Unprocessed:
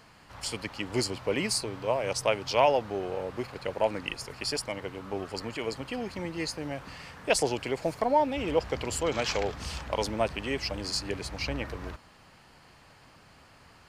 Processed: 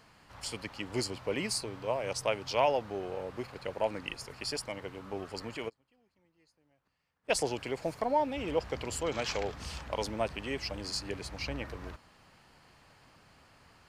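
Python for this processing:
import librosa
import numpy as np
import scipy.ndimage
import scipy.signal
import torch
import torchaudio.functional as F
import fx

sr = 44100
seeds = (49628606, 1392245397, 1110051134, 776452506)

y = fx.gate_flip(x, sr, shuts_db=-36.0, range_db=-32, at=(5.68, 7.28), fade=0.02)
y = y * librosa.db_to_amplitude(-4.5)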